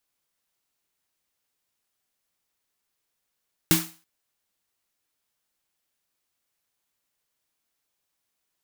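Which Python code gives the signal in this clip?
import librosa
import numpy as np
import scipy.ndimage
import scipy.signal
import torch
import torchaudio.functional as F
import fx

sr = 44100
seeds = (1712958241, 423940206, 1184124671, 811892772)

y = fx.drum_snare(sr, seeds[0], length_s=0.33, hz=170.0, second_hz=320.0, noise_db=0, noise_from_hz=690.0, decay_s=0.3, noise_decay_s=0.37)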